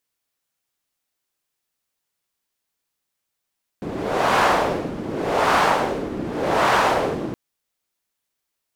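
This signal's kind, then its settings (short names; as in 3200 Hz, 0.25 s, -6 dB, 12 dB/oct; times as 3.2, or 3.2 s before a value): wind-like swept noise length 3.52 s, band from 280 Hz, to 1000 Hz, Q 1.4, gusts 3, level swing 12 dB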